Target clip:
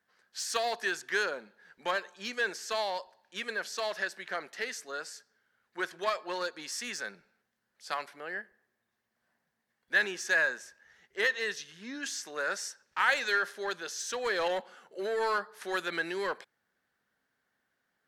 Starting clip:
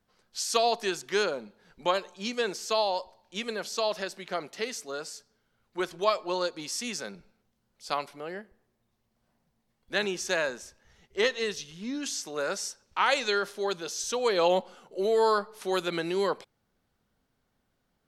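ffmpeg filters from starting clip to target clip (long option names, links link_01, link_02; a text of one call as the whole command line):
ffmpeg -i in.wav -filter_complex "[0:a]highpass=frequency=370:poles=1,asplit=2[link_01][link_02];[link_02]aeval=exprs='0.0422*(abs(mod(val(0)/0.0422+3,4)-2)-1)':channel_layout=same,volume=-9dB[link_03];[link_01][link_03]amix=inputs=2:normalize=0,equalizer=frequency=1700:width=2.8:gain=13,volume=-6.5dB" out.wav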